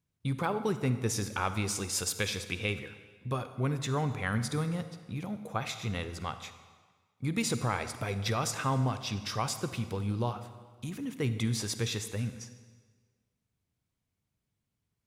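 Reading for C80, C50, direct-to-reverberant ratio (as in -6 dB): 12.0 dB, 11.0 dB, 10.5 dB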